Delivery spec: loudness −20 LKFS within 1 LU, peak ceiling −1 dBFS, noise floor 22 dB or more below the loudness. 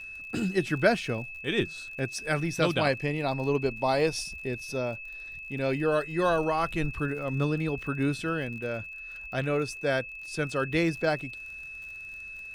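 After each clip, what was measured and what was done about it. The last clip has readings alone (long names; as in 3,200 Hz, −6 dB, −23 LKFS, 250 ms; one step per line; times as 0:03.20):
crackle rate 50 per second; interfering tone 2,600 Hz; level of the tone −39 dBFS; integrated loudness −29.5 LKFS; sample peak −9.0 dBFS; target loudness −20.0 LKFS
→ click removal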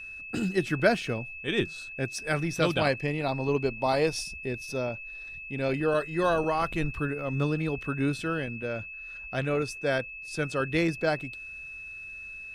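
crackle rate 0.16 per second; interfering tone 2,600 Hz; level of the tone −39 dBFS
→ notch filter 2,600 Hz, Q 30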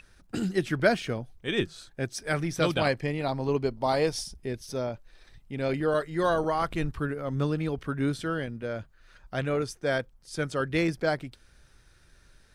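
interfering tone none found; integrated loudness −29.5 LKFS; sample peak −9.0 dBFS; target loudness −20.0 LKFS
→ level +9.5 dB
brickwall limiter −1 dBFS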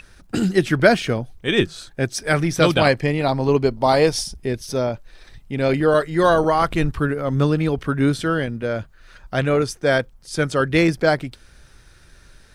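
integrated loudness −20.0 LKFS; sample peak −1.0 dBFS; background noise floor −51 dBFS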